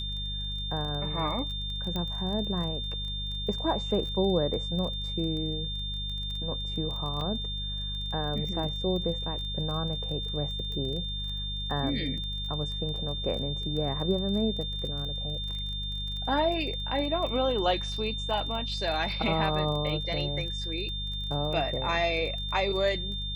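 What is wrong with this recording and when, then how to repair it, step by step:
surface crackle 22 per second −35 dBFS
mains hum 50 Hz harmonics 4 −36 dBFS
whistle 3,600 Hz −34 dBFS
0:01.96: click −19 dBFS
0:07.21: drop-out 2.5 ms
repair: click removal
hum removal 50 Hz, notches 4
notch filter 3,600 Hz, Q 30
repair the gap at 0:07.21, 2.5 ms

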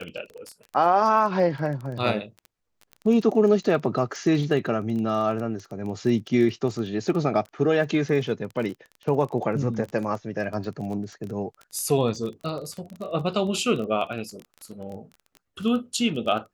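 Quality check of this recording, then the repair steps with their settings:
surface crackle 21 per second −31 dBFS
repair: click removal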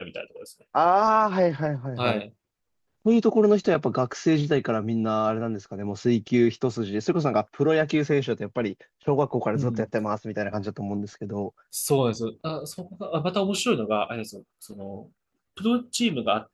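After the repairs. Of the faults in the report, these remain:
none of them is left

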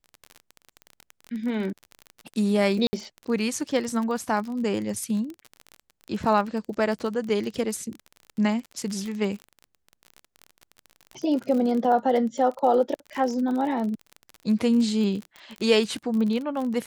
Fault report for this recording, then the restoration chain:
surface crackle 34 per second −30 dBFS
0:02.87–0:02.93: drop-out 60 ms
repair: click removal
repair the gap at 0:02.87, 60 ms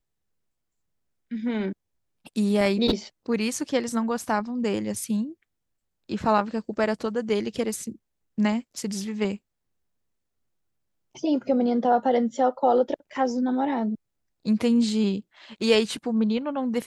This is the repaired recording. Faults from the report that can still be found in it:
none of them is left

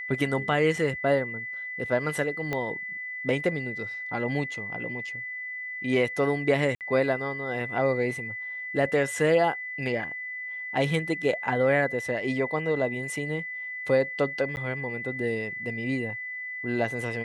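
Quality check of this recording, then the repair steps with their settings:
whistle 2,000 Hz −33 dBFS
0:02.53: click −16 dBFS
0:06.75–0:06.81: drop-out 58 ms
0:14.56–0:14.57: drop-out 9.9 ms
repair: click removal
notch filter 2,000 Hz, Q 30
repair the gap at 0:06.75, 58 ms
repair the gap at 0:14.56, 9.9 ms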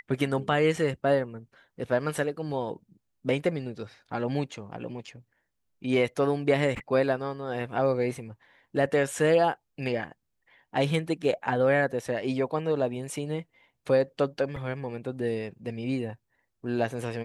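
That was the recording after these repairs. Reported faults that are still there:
0:02.53: click

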